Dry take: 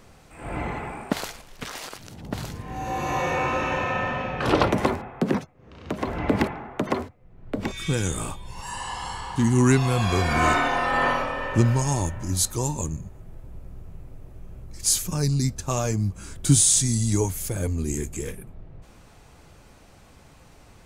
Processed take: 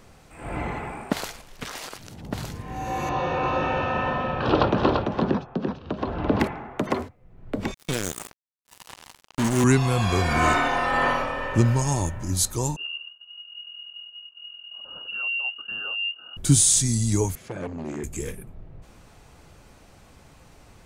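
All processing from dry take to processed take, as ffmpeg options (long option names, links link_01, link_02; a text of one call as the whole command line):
ffmpeg -i in.wav -filter_complex "[0:a]asettb=1/sr,asplit=3[link_01][link_02][link_03];[link_01]atrim=end=3.094[link_04];[link_02]atrim=start=3.09:end=6.4,asetpts=PTS-STARTPTS,afade=type=in:duration=0.004:curve=qsin,afade=type=out:start_time=3.306:duration=0.004:curve=qsin,lowpass=frequency=4500:width=0.5412,lowpass=frequency=4500:width=1.3066,equalizer=frequency=2100:width=4.3:gain=-13,aecho=1:1:340:0.631,atrim=end_sample=145971[link_05];[link_03]atrim=start=6.396[link_06];[link_04][link_05]acrossfade=duration=0.004:curve1=hsin:curve2=qsin[link_07];[link_07][link_06]acrossfade=duration=0.004:curve1=qsin:curve2=hsin,asettb=1/sr,asplit=3[link_08][link_09][link_10];[link_08]atrim=end=7.744[link_11];[link_09]atrim=start=7.74:end=9.64,asetpts=PTS-STARTPTS,afade=type=in:duration=0.004:curve=qsin,afade=type=out:start_time=1.896:duration=0.004:curve=qsin,highpass=frequency=200:poles=1,acrusher=bits=3:mix=0:aa=0.5[link_12];[link_10]atrim=start=9.636[link_13];[link_11][link_12]acrossfade=duration=0.004:curve1=hsin:curve2=qsin[link_14];[link_14][link_13]acrossfade=duration=0.004:curve1=qsin:curve2=hsin,asettb=1/sr,asplit=3[link_15][link_16][link_17];[link_15]atrim=end=12.764[link_18];[link_16]atrim=start=12.76:end=16.37,asetpts=PTS-STARTPTS,afade=type=in:duration=0.004:curve=qsin,afade=type=out:start_time=3.606:duration=0.004:curve=qsin,agate=range=-33dB:threshold=-37dB:ratio=3:release=100:detection=peak,lowpass=frequency=2500:width_type=q:width=0.5098,lowpass=frequency=2500:width_type=q:width=0.6013,lowpass=frequency=2500:width_type=q:width=0.9,lowpass=frequency=2500:width_type=q:width=2.563,afreqshift=-2900,asuperstop=centerf=2100:order=12:qfactor=1.7[link_19];[link_17]atrim=start=16.366[link_20];[link_18][link_19]acrossfade=duration=0.004:curve1=hsin:curve2=qsin[link_21];[link_21][link_20]acrossfade=duration=0.004:curve1=qsin:curve2=hsin,asettb=1/sr,asplit=3[link_22][link_23][link_24];[link_22]atrim=end=17.354[link_25];[link_23]atrim=start=17.35:end=18.04,asetpts=PTS-STARTPTS,afade=type=in:duration=0.004:curve=qsin,afade=type=out:start_time=0.686:duration=0.004:curve=qsin,aeval=exprs='0.0891*(abs(mod(val(0)/0.0891+3,4)-2)-1)':channel_layout=same,highpass=190,lowpass=2700[link_26];[link_24]atrim=start=18.036[link_27];[link_25][link_26]acrossfade=duration=0.004:curve1=hsin:curve2=qsin[link_28];[link_28][link_27]acrossfade=duration=0.004:curve1=qsin:curve2=hsin" out.wav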